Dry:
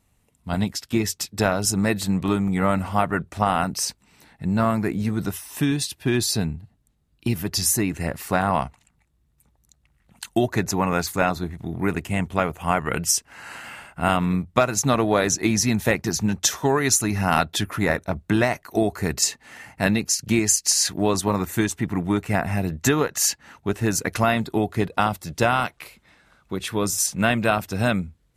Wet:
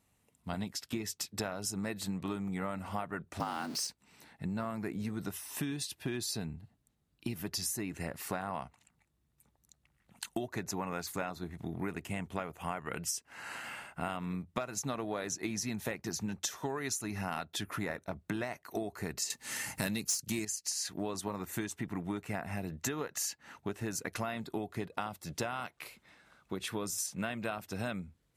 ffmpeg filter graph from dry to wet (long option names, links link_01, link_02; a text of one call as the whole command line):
ffmpeg -i in.wav -filter_complex "[0:a]asettb=1/sr,asplit=3[link_01][link_02][link_03];[link_01]atrim=end=3.404[link_04];[link_02]atrim=start=3.4:end=3.87,asetpts=PTS-STARTPTS,afade=type=in:duration=0.004:curve=qsin,afade=type=out:start_time=0.466:duration=0.004:curve=qsin,aeval=exprs='val(0)+0.5*0.0376*sgn(val(0))':channel_layout=same,equalizer=frequency=4500:width_type=o:width=0.47:gain=8.5,afreqshift=60[link_05];[link_03]atrim=start=3.866[link_06];[link_04][link_05]acrossfade=duration=0.004:curve1=hsin:curve2=qsin[link_07];[link_07][link_06]acrossfade=duration=0.004:curve1=qsin:curve2=hsin,asettb=1/sr,asplit=3[link_08][link_09][link_10];[link_08]atrim=end=19.304[link_11];[link_09]atrim=start=19.3:end=20.45,asetpts=PTS-STARTPTS,afade=type=in:duration=0.004:curve=qsin,afade=type=out:start_time=1.146:duration=0.004:curve=qsin,bass=frequency=250:gain=3,treble=frequency=4000:gain=15,bandreject=frequency=720:width=7.4,acontrast=79[link_12];[link_10]atrim=start=20.446[link_13];[link_11][link_12]acrossfade=duration=0.004:curve1=hsin:curve2=qsin[link_14];[link_14][link_13]acrossfade=duration=0.004:curve1=qsin:curve2=hsin,highpass=frequency=130:poles=1,acompressor=threshold=-29dB:ratio=5,volume=-5dB" out.wav